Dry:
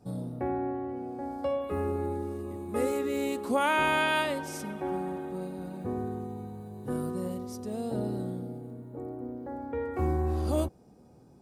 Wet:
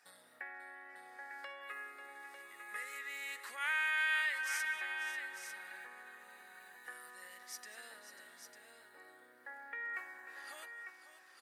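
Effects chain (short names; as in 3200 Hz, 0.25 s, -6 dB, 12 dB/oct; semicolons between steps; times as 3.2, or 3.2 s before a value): compressor 6:1, threshold -38 dBFS, peak gain reduction 15.5 dB; resonant high-pass 1800 Hz, resonance Q 6.5; tapped delay 0.191/0.542/0.899 s -18/-12/-8 dB; gain +2.5 dB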